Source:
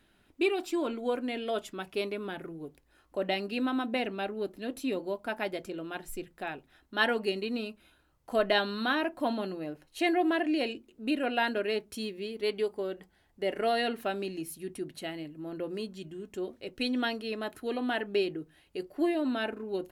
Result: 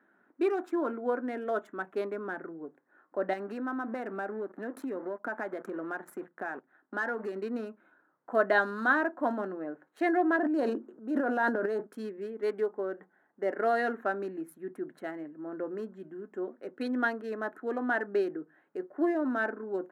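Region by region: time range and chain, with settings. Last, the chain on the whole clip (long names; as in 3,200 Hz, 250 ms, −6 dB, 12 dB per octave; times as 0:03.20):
0:03.33–0:07.37: leveller curve on the samples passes 2 + downward compressor 4 to 1, threshold −34 dBFS
0:10.36–0:11.87: parametric band 2,300 Hz −10.5 dB 0.74 octaves + transient designer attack −5 dB, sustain +11 dB
whole clip: adaptive Wiener filter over 9 samples; high-pass filter 210 Hz 24 dB per octave; high shelf with overshoot 2,100 Hz −9.5 dB, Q 3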